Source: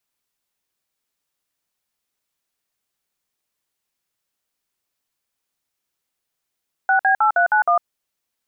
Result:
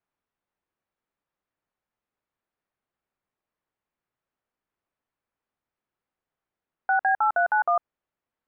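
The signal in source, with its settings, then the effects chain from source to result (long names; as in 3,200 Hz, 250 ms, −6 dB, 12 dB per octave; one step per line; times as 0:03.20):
touch tones "6B8391", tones 103 ms, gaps 54 ms, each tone −15.5 dBFS
low-pass filter 1,600 Hz 12 dB per octave
brickwall limiter −15 dBFS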